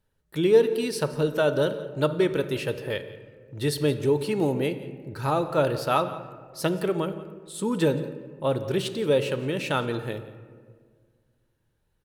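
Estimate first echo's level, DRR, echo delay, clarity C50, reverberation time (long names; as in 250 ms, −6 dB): −18.0 dB, 10.0 dB, 174 ms, 11.5 dB, 1.8 s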